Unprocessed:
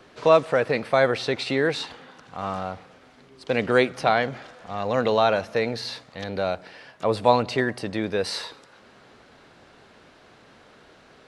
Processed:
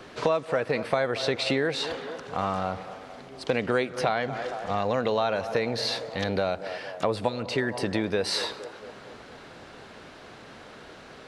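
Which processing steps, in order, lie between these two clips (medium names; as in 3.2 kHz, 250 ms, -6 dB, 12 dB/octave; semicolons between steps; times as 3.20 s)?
band-passed feedback delay 228 ms, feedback 63%, band-pass 610 Hz, level -16 dB; compression 5:1, threshold -29 dBFS, peak gain reduction 16 dB; spectral replace 7.31–7.66 s, 480–1200 Hz after; trim +6 dB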